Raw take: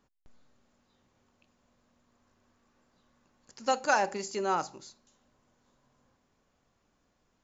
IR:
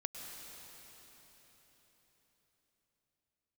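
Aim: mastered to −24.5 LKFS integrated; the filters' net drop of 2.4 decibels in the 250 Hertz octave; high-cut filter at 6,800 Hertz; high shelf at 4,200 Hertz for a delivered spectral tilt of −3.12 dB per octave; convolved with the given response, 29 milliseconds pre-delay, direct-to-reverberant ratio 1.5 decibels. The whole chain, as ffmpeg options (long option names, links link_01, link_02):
-filter_complex "[0:a]lowpass=6800,equalizer=frequency=250:width_type=o:gain=-3.5,highshelf=frequency=4200:gain=-6.5,asplit=2[link_01][link_02];[1:a]atrim=start_sample=2205,adelay=29[link_03];[link_02][link_03]afir=irnorm=-1:irlink=0,volume=-1dB[link_04];[link_01][link_04]amix=inputs=2:normalize=0,volume=6.5dB"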